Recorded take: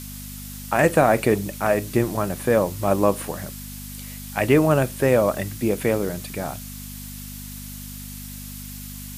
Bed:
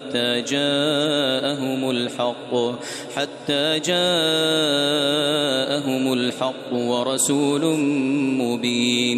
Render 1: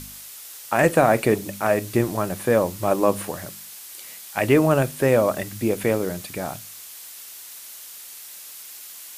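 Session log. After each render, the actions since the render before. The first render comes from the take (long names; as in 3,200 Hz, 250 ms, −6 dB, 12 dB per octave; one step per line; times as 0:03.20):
hum removal 50 Hz, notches 5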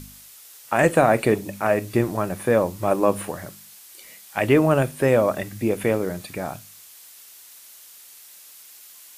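noise reduction from a noise print 6 dB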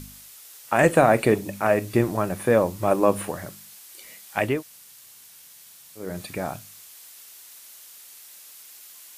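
0:04.51–0:06.07: fill with room tone, crossfade 0.24 s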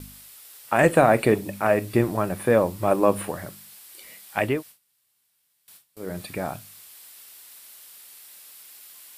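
noise gate with hold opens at −36 dBFS
parametric band 6,400 Hz −6.5 dB 0.36 octaves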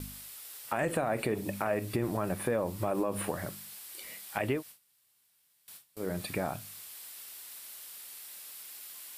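brickwall limiter −14.5 dBFS, peak gain reduction 10 dB
downward compressor 2 to 1, threshold −31 dBFS, peak gain reduction 6.5 dB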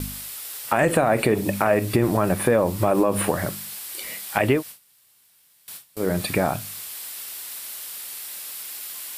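level +11.5 dB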